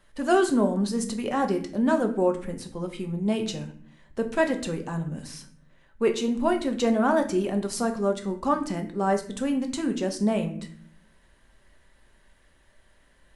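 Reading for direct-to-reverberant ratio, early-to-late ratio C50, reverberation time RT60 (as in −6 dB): 4.0 dB, 11.5 dB, 0.55 s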